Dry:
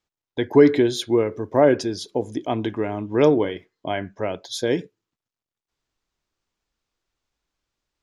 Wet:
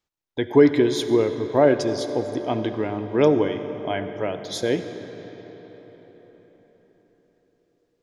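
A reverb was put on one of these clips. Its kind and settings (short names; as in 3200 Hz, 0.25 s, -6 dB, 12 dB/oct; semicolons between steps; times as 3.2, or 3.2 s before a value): digital reverb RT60 5 s, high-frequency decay 0.65×, pre-delay 30 ms, DRR 9 dB; gain -1 dB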